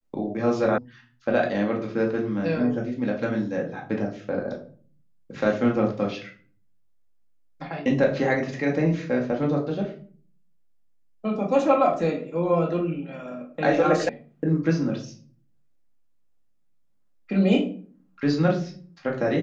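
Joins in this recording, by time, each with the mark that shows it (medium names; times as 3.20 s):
0.78 s: sound stops dead
14.09 s: sound stops dead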